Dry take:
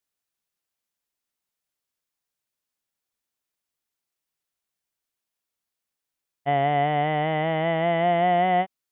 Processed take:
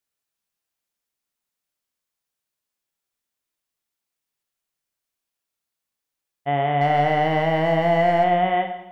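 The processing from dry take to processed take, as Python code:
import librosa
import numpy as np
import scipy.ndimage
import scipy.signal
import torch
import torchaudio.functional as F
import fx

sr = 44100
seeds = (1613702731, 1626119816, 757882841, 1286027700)

y = fx.leveller(x, sr, passes=1, at=(6.81, 8.24))
y = fx.rev_schroeder(y, sr, rt60_s=0.95, comb_ms=28, drr_db=5.5)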